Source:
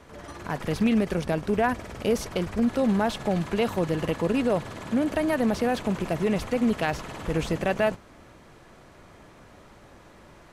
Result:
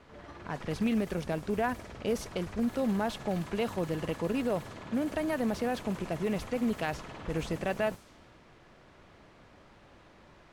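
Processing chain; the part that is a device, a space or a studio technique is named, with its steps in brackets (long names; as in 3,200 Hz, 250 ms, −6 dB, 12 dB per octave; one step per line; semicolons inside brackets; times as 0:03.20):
cassette deck with a dynamic noise filter (white noise bed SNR 24 dB; low-pass that shuts in the quiet parts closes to 2,600 Hz, open at −21 dBFS)
level −6.5 dB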